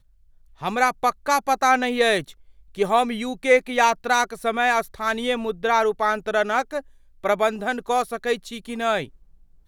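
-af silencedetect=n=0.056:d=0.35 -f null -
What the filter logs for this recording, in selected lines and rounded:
silence_start: 0.00
silence_end: 0.63 | silence_duration: 0.63
silence_start: 2.21
silence_end: 2.78 | silence_duration: 0.58
silence_start: 6.79
silence_end: 7.25 | silence_duration: 0.46
silence_start: 9.04
silence_end: 9.68 | silence_duration: 0.64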